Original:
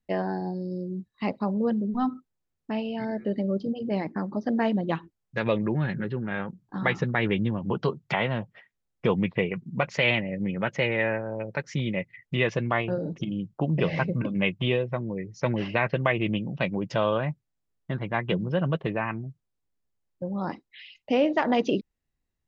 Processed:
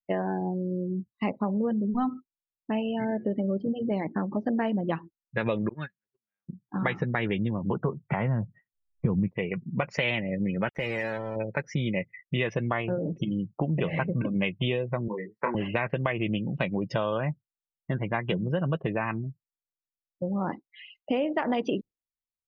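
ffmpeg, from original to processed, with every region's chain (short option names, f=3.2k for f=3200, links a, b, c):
-filter_complex "[0:a]asettb=1/sr,asplit=3[a][b][c];[a]atrim=end=5.694[d];[b]atrim=start=5.69:end=6.49,asetpts=PTS-STARTPTS,afade=t=in:d=0.004:c=qsin,afade=t=out:st=0.796:d=0.004:c=qsin,highpass=f=55:w=0.5412,highpass=f=55:w=1.3066,agate=range=-40dB:threshold=-25dB:ratio=16:release=100:detection=peak,tiltshelf=f=1.1k:g=-9.5[e];[c]atrim=start=6.486[f];[d][e]acrossfade=d=0.004:c1=hsin:c2=qsin[g];[g][f]acrossfade=d=0.004:c1=qsin:c2=hsin,asettb=1/sr,asplit=3[h][i][j];[h]atrim=end=7.744[k];[i]atrim=start=7.74:end=9.28,asetpts=PTS-STARTPTS,afade=t=in:d=0.004:c=qsin,afade=t=out:st=1.536:d=0.004:c=qsin,asubboost=boost=11.5:cutoff=250,lowpass=1.6k[l];[j]atrim=start=9.276[m];[k][l]acrossfade=d=0.004:c1=hsin:c2=qsin[n];[n][m]acrossfade=d=0.004:c1=qsin:c2=hsin,asettb=1/sr,asplit=3[o][p][q];[o]atrim=end=10.684[r];[p]atrim=start=10.68:end=11.36,asetpts=PTS-STARTPTS,afade=t=in:d=0.004:c=qsin,afade=t=out:st=0.676:d=0.004:c=qsin,acompressor=threshold=-31dB:ratio=2.5:attack=3.2:release=140:knee=1:detection=peak,asubboost=boost=5:cutoff=58,acrusher=bits=5:mix=0:aa=0.5[s];[q]atrim=start=11.356[t];[r][s]acrossfade=d=0.004:c1=hsin:c2=qsin[u];[u][t]acrossfade=d=0.004:c1=qsin:c2=hsin,asettb=1/sr,asplit=3[v][w][x];[v]atrim=end=15.084[y];[w]atrim=start=15.08:end=15.55,asetpts=PTS-STARTPTS,afade=t=in:d=0.004:c=qsin,afade=t=out:st=0.466:d=0.004:c=qsin,highpass=f=220:w=0.5412,highpass=f=220:w=1.3066,equalizer=f=280:t=q:w=4:g=-10,equalizer=f=600:t=q:w=4:g=-8,equalizer=f=1k:t=q:w=4:g=9,equalizer=f=1.7k:t=q:w=4:g=3,lowpass=f=2.2k:w=0.5412,lowpass=f=2.2k:w=1.3066,asplit=2[z][aa];[aa]adelay=28,volume=-4dB[ab];[z][ab]amix=inputs=2:normalize=0,atrim=end_sample=20727[ac];[x]atrim=start=15.546[ad];[y][ac]acrossfade=d=0.004:c1=hsin:c2=qsin[ae];[ae][ad]acrossfade=d=0.004:c1=qsin:c2=hsin,afftdn=nr=27:nf=-42,acompressor=threshold=-26dB:ratio=6,volume=2.5dB"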